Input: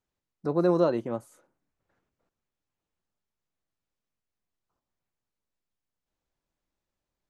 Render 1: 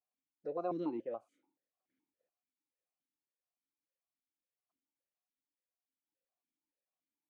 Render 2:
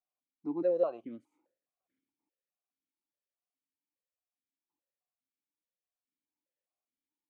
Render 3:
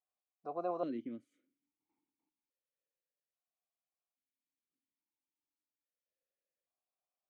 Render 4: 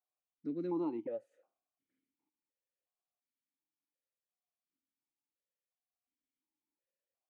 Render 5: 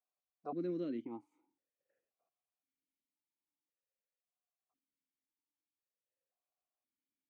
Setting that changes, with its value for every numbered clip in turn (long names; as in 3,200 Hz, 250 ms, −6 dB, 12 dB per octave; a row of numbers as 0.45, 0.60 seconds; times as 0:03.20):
formant filter that steps through the vowels, speed: 7, 4.8, 1.2, 2.8, 1.9 Hertz